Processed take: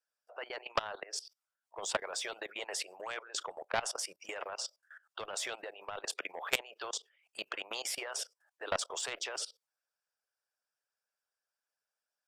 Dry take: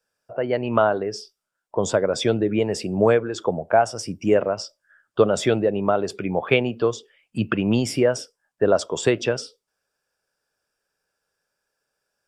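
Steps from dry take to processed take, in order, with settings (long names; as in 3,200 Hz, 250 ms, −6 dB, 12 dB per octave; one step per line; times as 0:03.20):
inverse Chebyshev high-pass filter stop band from 270 Hz, stop band 40 dB
harmonic and percussive parts rebalanced harmonic −15 dB
harmonic generator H 7 −28 dB, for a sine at −5 dBFS
output level in coarse steps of 21 dB
every bin compressed towards the loudest bin 2 to 1
level −2.5 dB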